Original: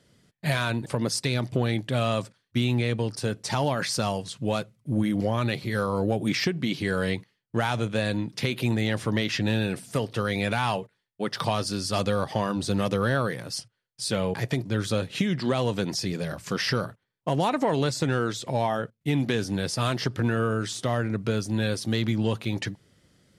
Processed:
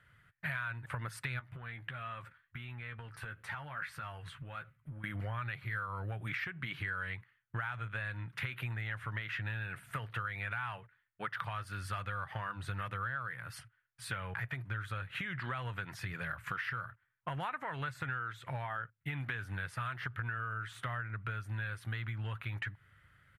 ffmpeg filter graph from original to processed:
ffmpeg -i in.wav -filter_complex "[0:a]asettb=1/sr,asplit=3[link_01][link_02][link_03];[link_01]atrim=end=1.394[link_04];[link_02]atrim=start=1.39:end=5.04,asetpts=PTS-STARTPTS,afade=type=in:duration=0.004:curve=qsin,afade=type=out:start_time=3.646:duration=0.004:curve=qsin,equalizer=frequency=7200:width=0.92:gain=-4.5,acompressor=threshold=-36dB:ratio=6:attack=3.2:release=140:knee=1:detection=peak,asplit=2[link_05][link_06];[link_06]adelay=13,volume=-7.5dB[link_07];[link_05][link_07]amix=inputs=2:normalize=0,atrim=end_sample=160965[link_08];[link_03]atrim=start=5.036[link_09];[link_04][link_08]acrossfade=duration=0.004:curve1=hsin:curve2=qsin[link_10];[link_10][link_09]acrossfade=duration=0.004:curve1=qsin:curve2=hsin,firequalizer=gain_entry='entry(110,0);entry(210,-18);entry(440,-16);entry(1400,9);entry(5100,-23);entry(12000,-7)':delay=0.05:min_phase=1,acompressor=threshold=-36dB:ratio=6" out.wav

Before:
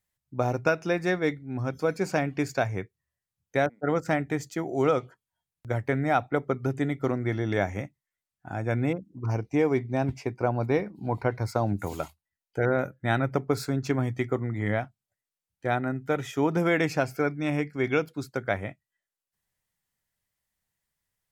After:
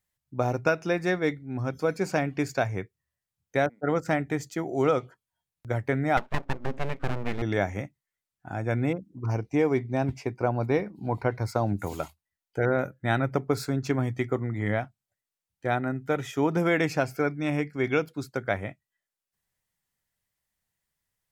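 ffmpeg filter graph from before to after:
ffmpeg -i in.wav -filter_complex "[0:a]asettb=1/sr,asplit=3[link_01][link_02][link_03];[link_01]atrim=end=6.174[link_04];[link_02]atrim=start=6.17:end=7.42,asetpts=PTS-STARTPTS,afade=type=in:duration=0.004:curve=qsin,afade=type=out:start_time=1.246:duration=0.004:curve=qsin,lowpass=3500,aeval=exprs='abs(val(0))':channel_layout=same[link_05];[link_03]atrim=start=7.416[link_06];[link_04][link_05]acrossfade=duration=0.004:curve1=hsin:curve2=qsin[link_07];[link_07][link_06]acrossfade=duration=0.004:curve1=qsin:curve2=hsin" out.wav

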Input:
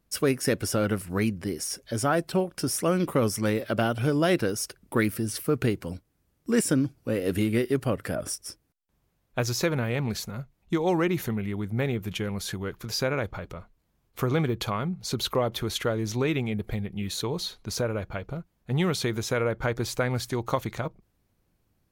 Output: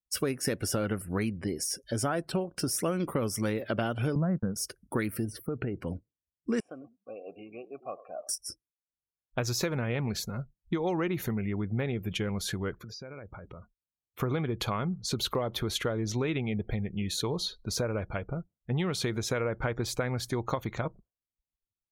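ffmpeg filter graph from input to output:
ffmpeg -i in.wav -filter_complex "[0:a]asettb=1/sr,asplit=3[link_01][link_02][link_03];[link_01]atrim=end=4.154[link_04];[link_02]atrim=start=4.15:end=4.56,asetpts=PTS-STARTPTS,afade=type=in:duration=0.004:curve=qsin,afade=type=out:start_time=0.406:duration=0.004:curve=qsin,lowpass=frequency=1400:width=0.5412,lowpass=frequency=1400:width=1.3066,agate=range=-37dB:threshold=-29dB:ratio=16:release=100:detection=peak,lowshelf=frequency=250:width_type=q:width=3:gain=7.5[link_05];[link_03]atrim=start=4.556[link_06];[link_04][link_05]acrossfade=duration=0.004:curve1=hsin:curve2=qsin[link_07];[link_07][link_06]acrossfade=duration=0.004:curve1=qsin:curve2=hsin,asettb=1/sr,asplit=3[link_08][link_09][link_10];[link_08]atrim=end=5.254[link_11];[link_09]atrim=start=5.25:end=5.76,asetpts=PTS-STARTPTS,afade=type=in:duration=0.004:curve=qsin,afade=type=out:start_time=0.506:duration=0.004:curve=qsin,equalizer=frequency=7600:width=0.31:gain=-10.5,acompressor=threshold=-28dB:ratio=6:attack=3.2:release=140:knee=1:detection=peak[link_12];[link_10]atrim=start=5.756[link_13];[link_11][link_12]acrossfade=duration=0.004:curve1=hsin:curve2=qsin[link_14];[link_14][link_13]acrossfade=duration=0.004:curve1=qsin:curve2=hsin,asettb=1/sr,asplit=3[link_15][link_16][link_17];[link_15]atrim=end=6.604[link_18];[link_16]atrim=start=6.6:end=8.29,asetpts=PTS-STARTPTS,afade=type=in:duration=0.004:curve=qsin,afade=type=out:start_time=1.686:duration=0.004:curve=qsin,acrusher=bits=8:dc=4:mix=0:aa=0.000001,asplit=3[link_19][link_20][link_21];[link_19]bandpass=frequency=730:width_type=q:width=8,volume=0dB[link_22];[link_20]bandpass=frequency=1090:width_type=q:width=8,volume=-6dB[link_23];[link_21]bandpass=frequency=2440:width_type=q:width=8,volume=-9dB[link_24];[link_22][link_23][link_24]amix=inputs=3:normalize=0,asplit=4[link_25][link_26][link_27][link_28];[link_26]adelay=100,afreqshift=-37,volume=-15.5dB[link_29];[link_27]adelay=200,afreqshift=-74,volume=-26dB[link_30];[link_28]adelay=300,afreqshift=-111,volume=-36.4dB[link_31];[link_25][link_29][link_30][link_31]amix=inputs=4:normalize=0,atrim=end_sample=74529[link_32];[link_17]atrim=start=8.286[link_33];[link_18][link_32]acrossfade=duration=0.004:curve1=hsin:curve2=qsin[link_34];[link_34][link_33]acrossfade=duration=0.004:curve1=qsin:curve2=hsin,asettb=1/sr,asplit=3[link_35][link_36][link_37];[link_35]atrim=end=12.784[link_38];[link_36]atrim=start=12.78:end=14.2,asetpts=PTS-STARTPTS,afade=type=in:duration=0.004:curve=qsin,afade=type=out:start_time=1.416:duration=0.004:curve=qsin,highpass=41,acompressor=threshold=-40dB:ratio=8:attack=3.2:release=140:knee=1:detection=peak[link_39];[link_37]atrim=start=14.196[link_40];[link_38][link_39]acrossfade=duration=0.004:curve1=hsin:curve2=qsin[link_41];[link_41][link_40]acrossfade=duration=0.004:curve1=qsin:curve2=hsin,afftdn=noise_reduction=34:noise_floor=-48,acompressor=threshold=-26dB:ratio=6" out.wav

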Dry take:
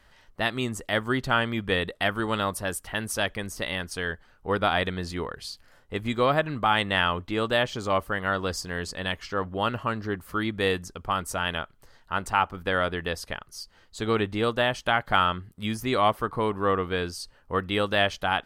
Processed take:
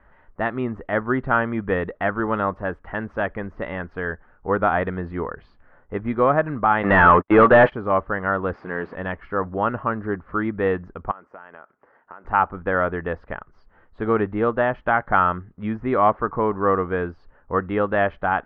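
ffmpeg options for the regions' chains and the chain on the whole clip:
ffmpeg -i in.wav -filter_complex "[0:a]asettb=1/sr,asplit=3[link_01][link_02][link_03];[link_01]atrim=end=6.834[link_04];[link_02]atrim=start=6.83:end=7.72,asetpts=PTS-STARTPTS,afade=type=in:duration=0.004:curve=qsin,afade=type=out:start_time=0.886:duration=0.004:curve=qsin,agate=range=-50dB:threshold=-35dB:ratio=16:release=100:detection=peak,acompressor=mode=upward:threshold=-33dB:ratio=2.5:attack=3.2:release=140:knee=2.83:detection=peak,asplit=2[link_05][link_06];[link_06]highpass=frequency=720:poles=1,volume=27dB,asoftclip=type=tanh:threshold=-7.5dB[link_07];[link_05][link_07]amix=inputs=2:normalize=0,lowpass=frequency=4100:poles=1,volume=-6dB[link_08];[link_03]atrim=start=7.716[link_09];[link_04][link_08]acrossfade=duration=0.004:curve1=hsin:curve2=qsin[link_10];[link_10][link_09]acrossfade=duration=0.004:curve1=qsin:curve2=hsin,asettb=1/sr,asplit=3[link_11][link_12][link_13];[link_11]atrim=end=8.534[link_14];[link_12]atrim=start=8.53:end=8.95,asetpts=PTS-STARTPTS,afade=type=in:duration=0.004:curve=qsin,afade=type=out:start_time=0.416:duration=0.004:curve=qsin,aeval=exprs='val(0)+0.5*0.0178*sgn(val(0))':channel_layout=same,highpass=200,lowpass=6500[link_15];[link_13]atrim=start=8.946[link_16];[link_14][link_15]acrossfade=duration=0.004:curve1=hsin:curve2=qsin[link_17];[link_17][link_16]acrossfade=duration=0.004:curve1=qsin:curve2=hsin,asettb=1/sr,asplit=3[link_18][link_19][link_20];[link_18]atrim=end=11.114[link_21];[link_19]atrim=start=11.11:end=12.25,asetpts=PTS-STARTPTS,afade=type=in:duration=0.004:curve=qsin,afade=type=out:start_time=1.136:duration=0.004:curve=qsin,highpass=300,equalizer=frequency=3800:width_type=o:width=0.36:gain=-12,acompressor=threshold=-40dB:ratio=12:attack=3.2:release=140:knee=1:detection=peak[link_22];[link_20]atrim=start=12.246[link_23];[link_21][link_22]acrossfade=duration=0.004:curve1=hsin:curve2=qsin[link_24];[link_24][link_23]acrossfade=duration=0.004:curve1=qsin:curve2=hsin,lowpass=frequency=1700:width=0.5412,lowpass=frequency=1700:width=1.3066,equalizer=frequency=110:width=1.8:gain=-4,volume=5dB" out.wav

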